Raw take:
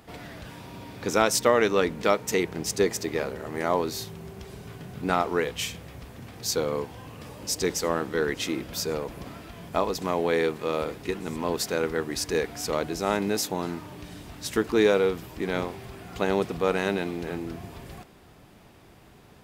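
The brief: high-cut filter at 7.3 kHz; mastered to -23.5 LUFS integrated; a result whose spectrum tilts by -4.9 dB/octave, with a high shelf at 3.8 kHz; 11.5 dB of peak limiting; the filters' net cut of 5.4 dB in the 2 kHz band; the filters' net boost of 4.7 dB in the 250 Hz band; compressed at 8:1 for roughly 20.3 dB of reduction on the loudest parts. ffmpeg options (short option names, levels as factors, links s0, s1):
-af "lowpass=7300,equalizer=f=250:t=o:g=6.5,equalizer=f=2000:t=o:g=-8,highshelf=f=3800:g=3,acompressor=threshold=0.0158:ratio=8,volume=9.44,alimiter=limit=0.224:level=0:latency=1"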